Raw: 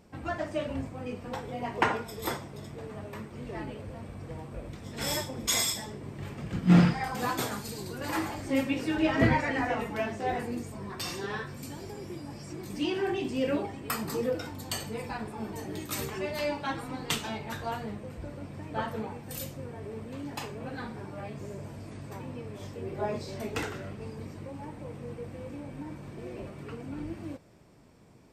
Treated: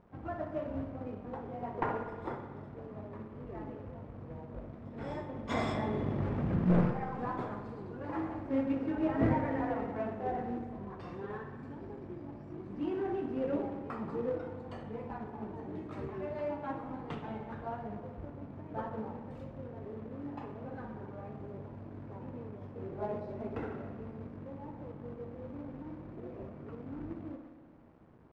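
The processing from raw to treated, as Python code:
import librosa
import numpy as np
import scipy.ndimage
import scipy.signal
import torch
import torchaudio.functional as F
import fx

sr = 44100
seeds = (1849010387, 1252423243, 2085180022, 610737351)

y = np.minimum(x, 2.0 * 10.0 ** (-17.0 / 20.0) - x)
y = fx.highpass(y, sr, hz=77.0, slope=12, at=(16.38, 16.84))
y = fx.rev_spring(y, sr, rt60_s=1.6, pass_ms=(59,), chirp_ms=40, drr_db=6.0)
y = fx.quant_companded(y, sr, bits=4)
y = scipy.signal.sosfilt(scipy.signal.butter(2, 1100.0, 'lowpass', fs=sr, output='sos'), y)
y = fx.env_flatten(y, sr, amount_pct=50, at=(5.49, 6.69), fade=0.02)
y = F.gain(torch.from_numpy(y), -5.0).numpy()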